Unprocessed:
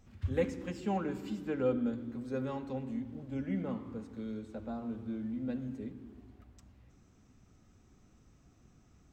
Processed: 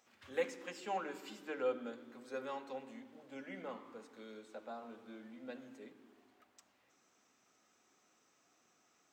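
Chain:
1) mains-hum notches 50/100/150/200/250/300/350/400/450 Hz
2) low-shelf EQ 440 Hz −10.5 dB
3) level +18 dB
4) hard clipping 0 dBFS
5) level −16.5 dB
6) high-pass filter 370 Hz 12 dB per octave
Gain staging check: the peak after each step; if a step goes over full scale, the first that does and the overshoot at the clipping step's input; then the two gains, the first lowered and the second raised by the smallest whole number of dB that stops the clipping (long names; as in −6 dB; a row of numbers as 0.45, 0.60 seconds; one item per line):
−19.0, −23.5, −5.5, −5.5, −22.0, −23.5 dBFS
no step passes full scale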